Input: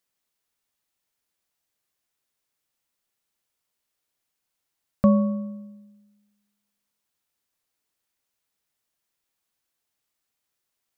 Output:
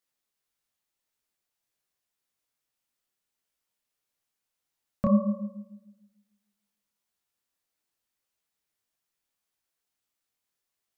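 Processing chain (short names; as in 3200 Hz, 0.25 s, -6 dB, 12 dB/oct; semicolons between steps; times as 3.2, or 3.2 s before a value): detuned doubles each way 58 cents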